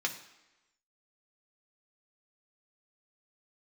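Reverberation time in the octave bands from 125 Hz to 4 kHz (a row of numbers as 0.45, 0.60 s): 0.80, 1.0, 1.0, 1.1, 1.0, 0.95 s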